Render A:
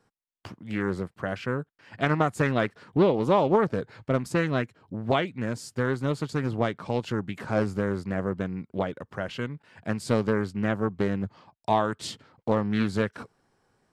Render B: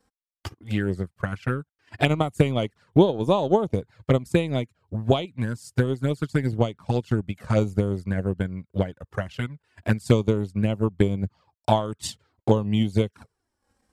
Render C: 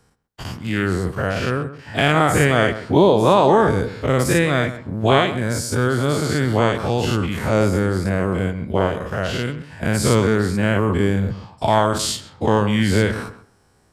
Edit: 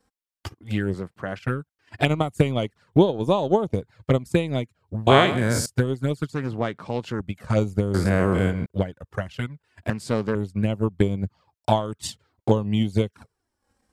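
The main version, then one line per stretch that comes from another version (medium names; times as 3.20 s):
B
0.94–1.39 s: from A
5.07–5.66 s: from C
6.33–7.20 s: from A
7.94–8.66 s: from C
9.90–10.35 s: from A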